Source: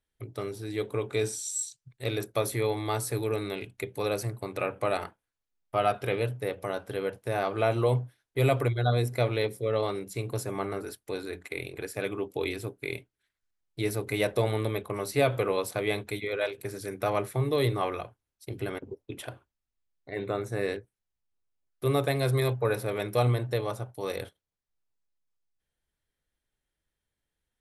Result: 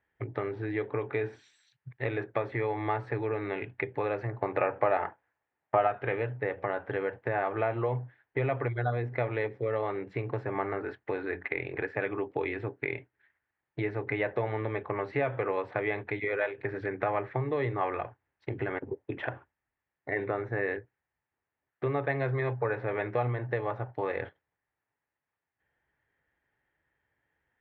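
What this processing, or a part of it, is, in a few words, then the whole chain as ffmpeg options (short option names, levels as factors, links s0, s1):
bass amplifier: -filter_complex "[0:a]acompressor=threshold=0.0112:ratio=3,highpass=89,equalizer=f=200:t=q:w=4:g=-7,equalizer=f=850:t=q:w=4:g=6,equalizer=f=1800:t=q:w=4:g=9,lowpass=f=2400:w=0.5412,lowpass=f=2400:w=1.3066,asettb=1/sr,asplit=3[s0][s1][s2];[s0]atrim=end=4.284[s3];[s1]atrim=start=4.28:end=5.87,asetpts=PTS-STARTPTS,afade=t=in:d=0.004:c=qsin,afade=t=out:st=1.586:d=0.004:c=qsin,equalizer=f=690:t=o:w=1.5:g=5[s4];[s2]atrim=start=5.866[s5];[s3][s4]acrossfade=d=0.004:c1=hsin:c2=qsin[s6];[s6][s5]acrossfade=d=0.004:c1=qsin:c2=hsin,volume=2.51"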